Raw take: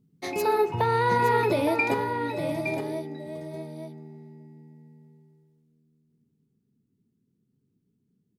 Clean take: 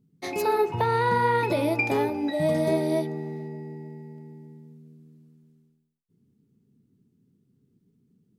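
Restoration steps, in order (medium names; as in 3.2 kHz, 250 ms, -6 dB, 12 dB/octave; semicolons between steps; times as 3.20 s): inverse comb 865 ms -7.5 dB; trim 0 dB, from 1.94 s +7.5 dB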